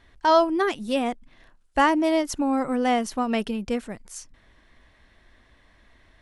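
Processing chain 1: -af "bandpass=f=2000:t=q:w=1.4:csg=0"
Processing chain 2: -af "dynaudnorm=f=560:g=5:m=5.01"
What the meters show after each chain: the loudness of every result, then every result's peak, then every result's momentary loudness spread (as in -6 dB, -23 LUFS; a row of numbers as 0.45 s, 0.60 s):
-32.5 LUFS, -18.0 LUFS; -13.5 dBFS, -3.0 dBFS; 15 LU, 14 LU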